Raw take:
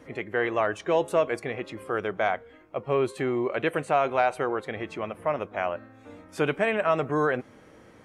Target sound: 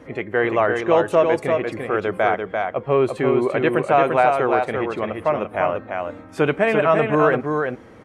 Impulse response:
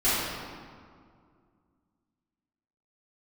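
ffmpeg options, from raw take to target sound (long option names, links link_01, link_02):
-filter_complex "[0:a]highshelf=frequency=3300:gain=-8,asplit=2[link_01][link_02];[link_02]aecho=0:1:343:0.596[link_03];[link_01][link_03]amix=inputs=2:normalize=0,volume=7dB"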